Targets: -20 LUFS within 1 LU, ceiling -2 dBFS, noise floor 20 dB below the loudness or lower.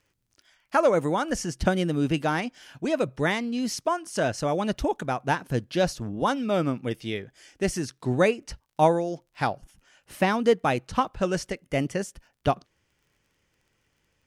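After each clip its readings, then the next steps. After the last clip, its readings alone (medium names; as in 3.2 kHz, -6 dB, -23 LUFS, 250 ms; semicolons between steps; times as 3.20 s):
tick rate 23 per s; loudness -26.5 LUFS; peak level -7.5 dBFS; loudness target -20.0 LUFS
-> de-click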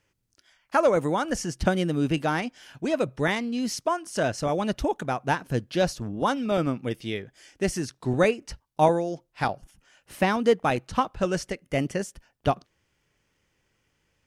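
tick rate 0 per s; loudness -26.5 LUFS; peak level -7.5 dBFS; loudness target -20.0 LUFS
-> trim +6.5 dB; peak limiter -2 dBFS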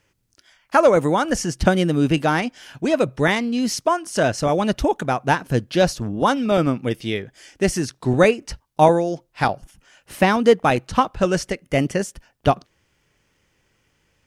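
loudness -20.0 LUFS; peak level -2.0 dBFS; noise floor -67 dBFS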